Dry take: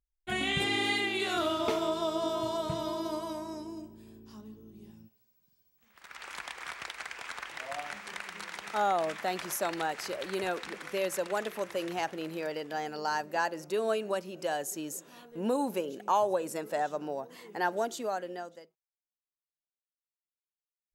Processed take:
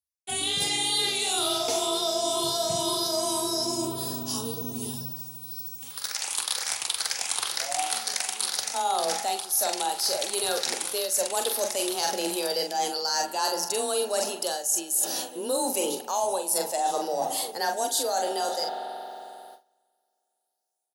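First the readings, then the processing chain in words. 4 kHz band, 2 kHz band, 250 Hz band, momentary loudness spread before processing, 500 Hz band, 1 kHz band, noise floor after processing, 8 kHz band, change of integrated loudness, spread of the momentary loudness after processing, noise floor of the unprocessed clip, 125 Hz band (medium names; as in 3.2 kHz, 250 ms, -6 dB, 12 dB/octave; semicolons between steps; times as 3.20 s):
+11.5 dB, -0.5 dB, +1.0 dB, 14 LU, +3.5 dB, +4.5 dB, -78 dBFS, +18.0 dB, +6.5 dB, 7 LU, under -85 dBFS, +2.0 dB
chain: drifting ripple filter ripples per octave 0.61, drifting +2 Hz, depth 6 dB; resonant high shelf 3.1 kHz +13.5 dB, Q 1.5; level rider gain up to 9 dB; high-pass 58 Hz; hum notches 50/100/150/200 Hz; doubling 44 ms -7 dB; spring tank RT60 3.4 s, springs 45 ms, chirp 75 ms, DRR 12 dB; frequency shift +22 Hz; gate with hold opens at -45 dBFS; graphic EQ with 31 bands 100 Hz +5 dB, 200 Hz -8 dB, 500 Hz +3 dB, 800 Hz +5 dB, 10 kHz +12 dB; reverse; compression 6:1, threshold -32 dBFS, peak gain reduction 24.5 dB; reverse; trim +6.5 dB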